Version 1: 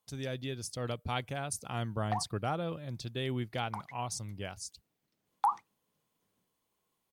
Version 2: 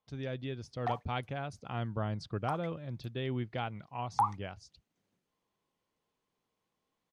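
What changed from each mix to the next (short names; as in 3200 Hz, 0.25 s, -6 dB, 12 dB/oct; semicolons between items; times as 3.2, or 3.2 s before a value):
speech: add air absorption 230 m; background: entry -1.25 s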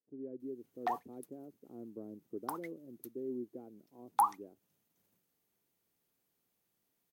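speech: add Butterworth band-pass 330 Hz, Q 1.9; background: remove air absorption 82 m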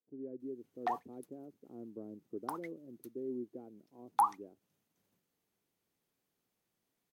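master: add high shelf 11000 Hz -10.5 dB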